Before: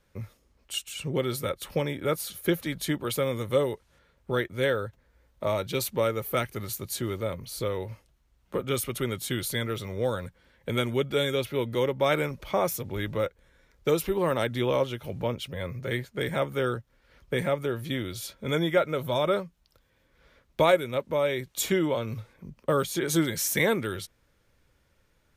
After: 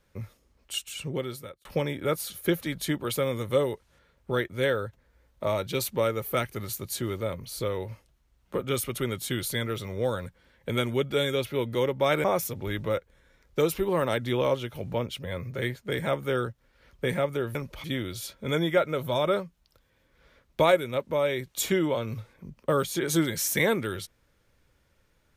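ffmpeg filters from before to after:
-filter_complex "[0:a]asplit=5[a][b][c][d][e];[a]atrim=end=1.65,asetpts=PTS-STARTPTS,afade=t=out:st=0.94:d=0.71[f];[b]atrim=start=1.65:end=12.242,asetpts=PTS-STARTPTS,afade=t=in:d=0.004:c=hsin[g];[c]atrim=start=12.528:end=17.842[h];[d]atrim=start=12.238:end=12.532[i];[e]atrim=start=17.838[j];[f][g]concat=n=2:v=0:a=1[k];[k][h]acrossfade=d=0.004:c1=hsin:c2=hsin[l];[l][i]acrossfade=d=0.004:c1=hsin:c2=hsin[m];[m][j]acrossfade=d=0.004:c1=hsin:c2=hsin"

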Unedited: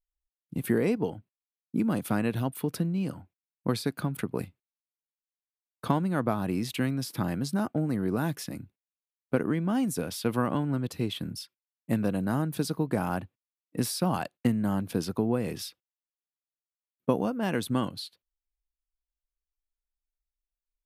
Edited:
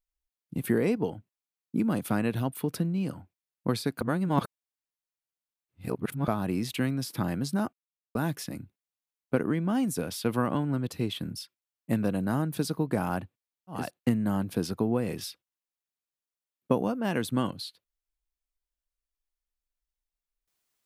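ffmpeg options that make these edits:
-filter_complex "[0:a]asplit=6[a][b][c][d][e][f];[a]atrim=end=4.012[g];[b]atrim=start=4.008:end=6.282,asetpts=PTS-STARTPTS,areverse[h];[c]atrim=start=6.278:end=7.73,asetpts=PTS-STARTPTS,afade=t=out:st=1.448:d=0.004:c=hsin[i];[d]atrim=start=7.73:end=8.15,asetpts=PTS-STARTPTS,volume=0[j];[e]atrim=start=8.15:end=13.91,asetpts=PTS-STARTPTS,afade=t=in:d=0.004:c=hsin[k];[f]atrim=start=14.05[l];[g][h]acrossfade=d=0.004:c1=hsin:c2=hsin[m];[i][j][k]concat=n=3:v=0:a=1[n];[m][n]acrossfade=d=0.004:c1=hsin:c2=hsin[o];[o][l]acrossfade=d=0.24:c1=tri:c2=tri"

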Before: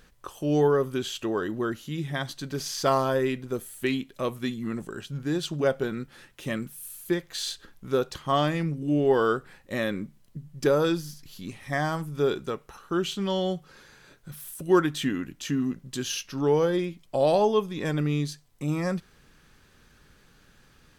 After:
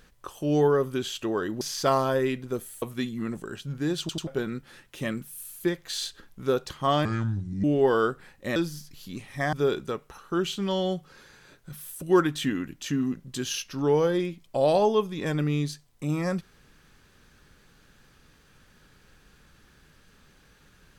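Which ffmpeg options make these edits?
-filter_complex "[0:a]asplit=10[a][b][c][d][e][f][g][h][i][j];[a]atrim=end=1.612[k];[b]atrim=start=2.608:end=3.822[l];[c]atrim=start=4.268:end=5.542[m];[d]atrim=start=5.448:end=5.542[n];[e]atrim=start=5.448:end=5.542[o];[f]atrim=start=5.718:end=8.504[p];[g]atrim=start=8.5:end=8.9,asetpts=PTS-STARTPTS,asetrate=29988,aresample=44100,atrim=end_sample=25941,asetpts=PTS-STARTPTS[q];[h]atrim=start=8.896:end=9.822[r];[i]atrim=start=10.878:end=11.852[s];[j]atrim=start=12.118[t];[k][l]acrossfade=d=0.004:c1=hsin:c2=hsin[u];[u][m]acrossfade=d=0.004:c1=hsin:c2=hsin[v];[v][n]acrossfade=d=0.004:c1=hsin:c2=hsin[w];[w][o]acrossfade=d=0.004:c1=hsin:c2=hsin[x];[x][p]acrossfade=d=0.004:c1=hsin:c2=hsin[y];[y][q]acrossfade=d=0.004:c1=hsin:c2=hsin[z];[z][r]acrossfade=d=0.004:c1=hsin:c2=hsin[aa];[aa][s]acrossfade=d=0.004:c1=hsin:c2=hsin[ab];[ab][t]acrossfade=d=0.004:c1=hsin:c2=hsin"

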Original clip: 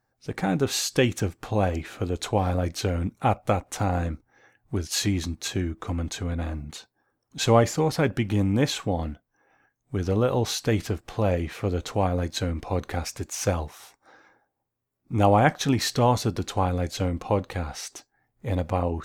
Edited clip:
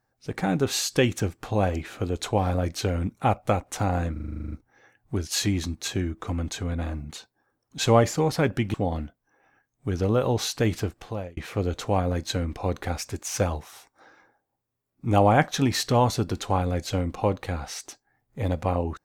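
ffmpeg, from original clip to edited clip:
-filter_complex "[0:a]asplit=13[a][b][c][d][e][f][g][h][i][j][k][l][m];[a]atrim=end=4.162[n];[b]atrim=start=4.118:end=4.162[o];[c]atrim=start=4.118:end=4.162[p];[d]atrim=start=4.118:end=4.162[q];[e]atrim=start=4.118:end=4.162[r];[f]atrim=start=4.118:end=4.162[s];[g]atrim=start=4.118:end=4.162[t];[h]atrim=start=4.118:end=4.162[u];[i]atrim=start=4.118:end=4.162[v];[j]atrim=start=4.118:end=4.162[w];[k]atrim=start=4.118:end=8.342[x];[l]atrim=start=8.808:end=11.44,asetpts=PTS-STARTPTS,afade=t=out:st=2.112:d=0.52[y];[m]atrim=start=11.44,asetpts=PTS-STARTPTS,afade=t=in:d=0.004:c=hsin[z];[n][o]acrossfade=d=0.004:c1=hsin:c2=hsin[aa];[aa][p]acrossfade=d=0.004:c1=hsin:c2=hsin[ab];[ab][q]acrossfade=d=0.004:c1=hsin:c2=hsin[ac];[ac][r]acrossfade=d=0.004:c1=hsin:c2=hsin[ad];[ad][s]acrossfade=d=0.004:c1=hsin:c2=hsin[ae];[ae][t]acrossfade=d=0.004:c1=hsin:c2=hsin[af];[af][u]acrossfade=d=0.004:c1=hsin:c2=hsin[ag];[ag][v]acrossfade=d=0.004:c1=hsin:c2=hsin[ah];[ah][w]acrossfade=d=0.004:c1=hsin:c2=hsin[ai];[ai][x]acrossfade=d=0.004:c1=hsin:c2=hsin[aj];[y][z]concat=n=2:v=0:a=1[ak];[aj][ak]acrossfade=d=0.004:c1=hsin:c2=hsin"

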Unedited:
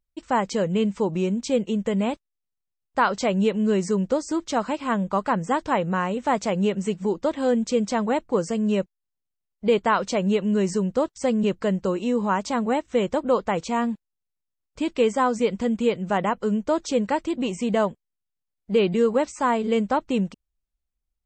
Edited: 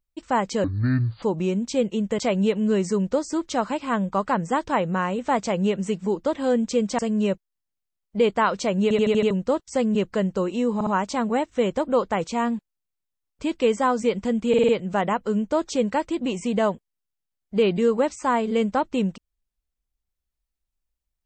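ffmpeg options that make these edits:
-filter_complex "[0:a]asplit=17[a][b][c][d][e][f][g][h][i][j][k][l][m][n][o][p][q];[a]atrim=end=0.644[r];[b]atrim=start=0.64:end=0.98,asetpts=PTS-STARTPTS,asetrate=25578,aresample=44100[s];[c]atrim=start=0.976:end=1.942[t];[d]atrim=start=3.168:end=7.972[u];[e]atrim=start=8.468:end=10.392[v];[f]atrim=start=10.308:end=10.392[w];[g]atrim=start=10.308:end=10.392[x];[h]atrim=start=10.308:end=10.392[y];[i]atrim=start=10.308:end=10.392[z];[j]atrim=start=10.308:end=10.392[aa];[k]atrim=start=10.788:end=12.292[ab];[l]atrim=start=12.228:end=12.292[ac];[m]atrim=start=12.228:end=15.902[ad];[n]atrim=start=15.848:end=15.902[ae];[o]atrim=start=15.848:end=15.902[af];[p]atrim=start=15.848:end=15.902[ag];[q]atrim=start=15.848[ah];[r][s]acrossfade=d=0.004:c1=hsin:c2=hsin[ai];[ai][t]acrossfade=d=0.004:c1=hsin:c2=hsin[aj];[aj][u]acrossfade=d=0.004:c1=hsin:c2=hsin[ak];[ak][v]acrossfade=d=0.004:c1=hsin:c2=hsin[al];[al][w]acrossfade=d=0.004:c1=hsin:c2=hsin[am];[am][x]acrossfade=d=0.004:c1=hsin:c2=hsin[an];[an][y]acrossfade=d=0.004:c1=hsin:c2=hsin[ao];[ao][z]acrossfade=d=0.004:c1=hsin:c2=hsin[ap];[ap][aa]acrossfade=d=0.004:c1=hsin:c2=hsin[aq];[aq][ab]acrossfade=d=0.004:c1=hsin:c2=hsin[ar];[ar][ac]acrossfade=d=0.004:c1=hsin:c2=hsin[as];[as][ad]acrossfade=d=0.004:c1=hsin:c2=hsin[at];[at][ae]acrossfade=d=0.004:c1=hsin:c2=hsin[au];[au][af]acrossfade=d=0.004:c1=hsin:c2=hsin[av];[av][ag]acrossfade=d=0.004:c1=hsin:c2=hsin[aw];[aw][ah]acrossfade=d=0.004:c1=hsin:c2=hsin"

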